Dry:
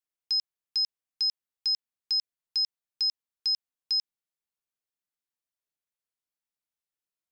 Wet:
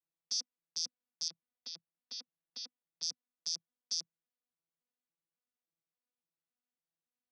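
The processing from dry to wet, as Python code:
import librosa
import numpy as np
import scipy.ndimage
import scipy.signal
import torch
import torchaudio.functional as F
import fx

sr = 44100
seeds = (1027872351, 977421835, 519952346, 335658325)

y = fx.vocoder_arp(x, sr, chord='bare fifth', root=52, every_ms=282)
y = fx.lowpass(y, sr, hz=4000.0, slope=24, at=(1.28, 3.03))
y = F.gain(torch.from_numpy(y), -8.0).numpy()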